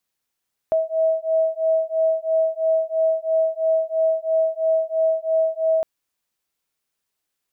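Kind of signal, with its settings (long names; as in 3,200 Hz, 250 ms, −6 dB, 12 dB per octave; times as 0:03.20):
two tones that beat 643 Hz, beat 3 Hz, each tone −20.5 dBFS 5.11 s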